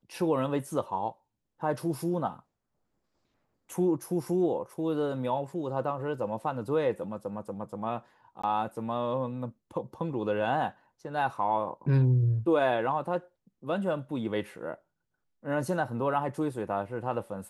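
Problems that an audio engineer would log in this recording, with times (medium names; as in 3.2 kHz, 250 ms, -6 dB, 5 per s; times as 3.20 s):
8.42–8.44 s: dropout 15 ms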